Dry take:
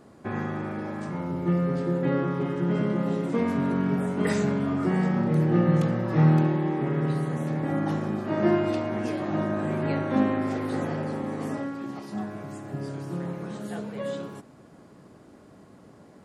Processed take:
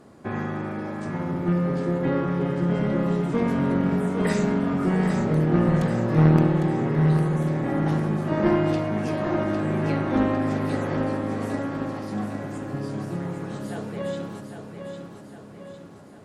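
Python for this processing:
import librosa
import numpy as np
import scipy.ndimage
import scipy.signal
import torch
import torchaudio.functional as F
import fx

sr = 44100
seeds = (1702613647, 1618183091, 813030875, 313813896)

p1 = fx.cheby_harmonics(x, sr, harmonics=(2, 3, 5), levels_db=(-10, -17, -22), full_scale_db=-8.5)
p2 = p1 + fx.echo_feedback(p1, sr, ms=804, feedback_pct=52, wet_db=-7, dry=0)
y = p2 * 10.0 ** (2.0 / 20.0)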